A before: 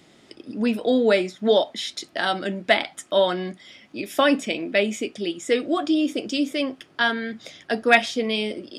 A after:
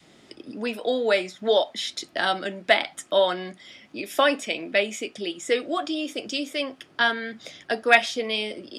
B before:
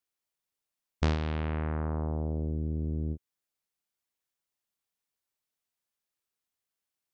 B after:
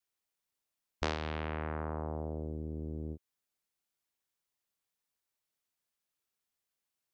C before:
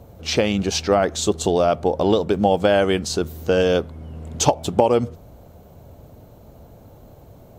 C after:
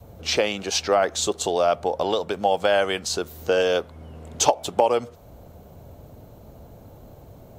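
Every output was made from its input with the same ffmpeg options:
ffmpeg -i in.wav -filter_complex "[0:a]adynamicequalizer=threshold=0.0224:dfrequency=340:dqfactor=1.2:tfrequency=340:tqfactor=1.2:attack=5:release=100:ratio=0.375:range=3:mode=cutabove:tftype=bell,acrossover=split=350|3600[link_01][link_02][link_03];[link_01]acompressor=threshold=-39dB:ratio=6[link_04];[link_04][link_02][link_03]amix=inputs=3:normalize=0" out.wav

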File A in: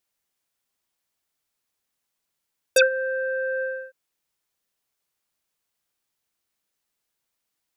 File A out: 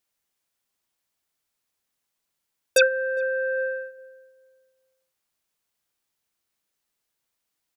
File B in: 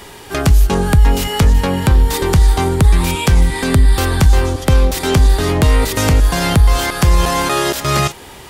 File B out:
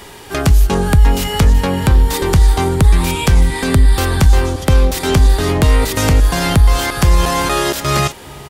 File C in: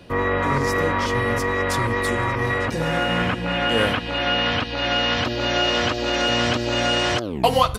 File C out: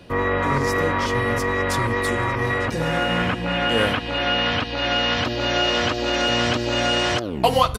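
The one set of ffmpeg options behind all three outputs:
ffmpeg -i in.wav -filter_complex "[0:a]asplit=2[link_01][link_02];[link_02]adelay=407,lowpass=frequency=840:poles=1,volume=-19.5dB,asplit=2[link_03][link_04];[link_04]adelay=407,lowpass=frequency=840:poles=1,volume=0.33,asplit=2[link_05][link_06];[link_06]adelay=407,lowpass=frequency=840:poles=1,volume=0.33[link_07];[link_01][link_03][link_05][link_07]amix=inputs=4:normalize=0" out.wav

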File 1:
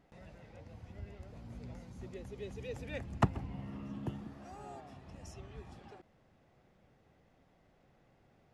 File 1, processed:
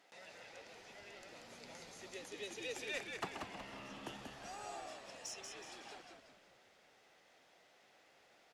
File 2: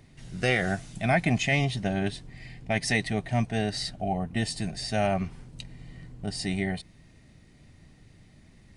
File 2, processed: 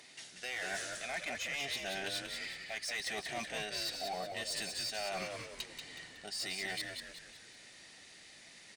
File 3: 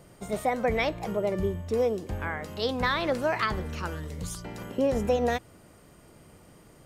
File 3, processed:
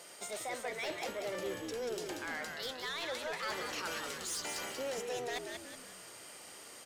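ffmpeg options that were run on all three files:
ffmpeg -i in.wav -filter_complex "[0:a]highpass=470,equalizer=frequency=5500:width=0.33:gain=11.5,bandreject=frequency=1100:width=19,areverse,acompressor=threshold=-33dB:ratio=12,areverse,asoftclip=type=tanh:threshold=-33.5dB,asplit=2[link_01][link_02];[link_02]asplit=5[link_03][link_04][link_05][link_06][link_07];[link_03]adelay=185,afreqshift=-75,volume=-5dB[link_08];[link_04]adelay=370,afreqshift=-150,volume=-12.3dB[link_09];[link_05]adelay=555,afreqshift=-225,volume=-19.7dB[link_10];[link_06]adelay=740,afreqshift=-300,volume=-27dB[link_11];[link_07]adelay=925,afreqshift=-375,volume=-34.3dB[link_12];[link_08][link_09][link_10][link_11][link_12]amix=inputs=5:normalize=0[link_13];[link_01][link_13]amix=inputs=2:normalize=0" out.wav

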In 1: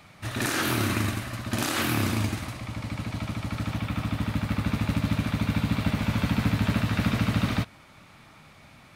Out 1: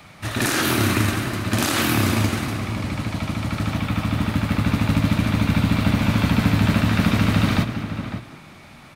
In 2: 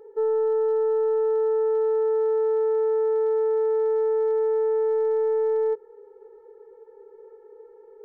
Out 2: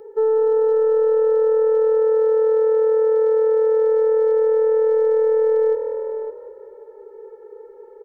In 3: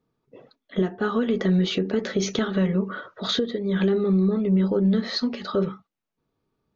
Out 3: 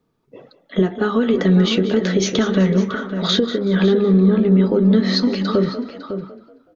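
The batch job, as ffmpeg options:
ffmpeg -i in.wav -filter_complex "[0:a]bandreject=frequency=60:width_type=h:width=6,bandreject=frequency=120:width_type=h:width=6,asplit=2[link_01][link_02];[link_02]asplit=4[link_03][link_04][link_05][link_06];[link_03]adelay=188,afreqshift=40,volume=-15dB[link_07];[link_04]adelay=376,afreqshift=80,volume=-22.5dB[link_08];[link_05]adelay=564,afreqshift=120,volume=-30.1dB[link_09];[link_06]adelay=752,afreqshift=160,volume=-37.6dB[link_10];[link_07][link_08][link_09][link_10]amix=inputs=4:normalize=0[link_11];[link_01][link_11]amix=inputs=2:normalize=0,acrossover=split=430|3000[link_12][link_13][link_14];[link_13]acompressor=threshold=-29dB:ratio=2[link_15];[link_12][link_15][link_14]amix=inputs=3:normalize=0,asplit=2[link_16][link_17];[link_17]adelay=553.9,volume=-9dB,highshelf=frequency=4000:gain=-12.5[link_18];[link_16][link_18]amix=inputs=2:normalize=0,volume=6.5dB" out.wav

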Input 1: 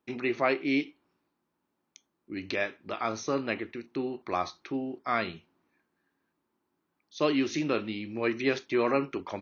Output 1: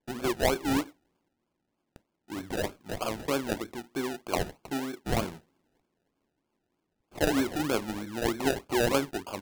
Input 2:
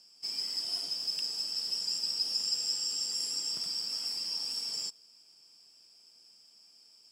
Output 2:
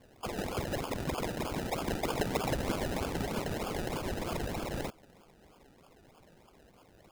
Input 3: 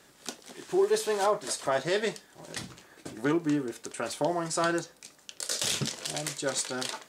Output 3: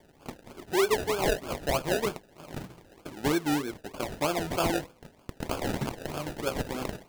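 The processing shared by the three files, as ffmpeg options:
ffmpeg -i in.wav -af "acrusher=samples=32:mix=1:aa=0.000001:lfo=1:lforange=19.2:lforate=3.2" out.wav

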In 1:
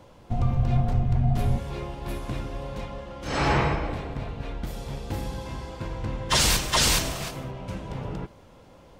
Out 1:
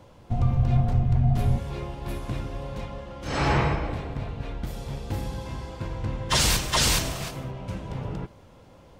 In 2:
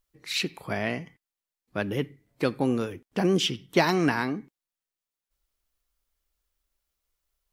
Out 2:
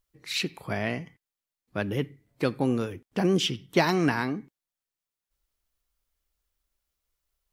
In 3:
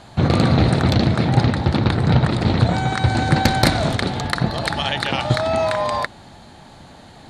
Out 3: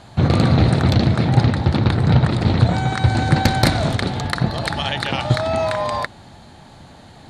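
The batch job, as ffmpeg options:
ffmpeg -i in.wav -af "equalizer=frequency=100:width_type=o:width=1.4:gain=3.5,volume=-1dB" out.wav

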